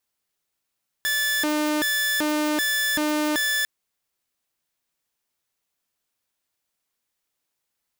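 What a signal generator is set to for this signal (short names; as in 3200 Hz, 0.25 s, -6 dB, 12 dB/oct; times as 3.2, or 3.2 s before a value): siren hi-lo 302–1740 Hz 1.3/s saw -18.5 dBFS 2.60 s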